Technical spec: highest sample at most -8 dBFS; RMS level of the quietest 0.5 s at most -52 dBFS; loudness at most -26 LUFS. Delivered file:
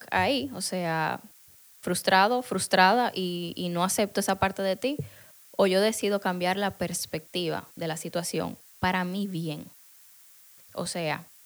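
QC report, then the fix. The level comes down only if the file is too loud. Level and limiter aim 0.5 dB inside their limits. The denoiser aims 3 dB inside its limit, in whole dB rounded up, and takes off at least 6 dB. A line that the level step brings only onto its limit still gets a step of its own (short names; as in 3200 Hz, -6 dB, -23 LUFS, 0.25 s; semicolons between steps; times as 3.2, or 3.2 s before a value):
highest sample -6.5 dBFS: fail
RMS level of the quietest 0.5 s -55 dBFS: OK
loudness -27.5 LUFS: OK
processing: limiter -8.5 dBFS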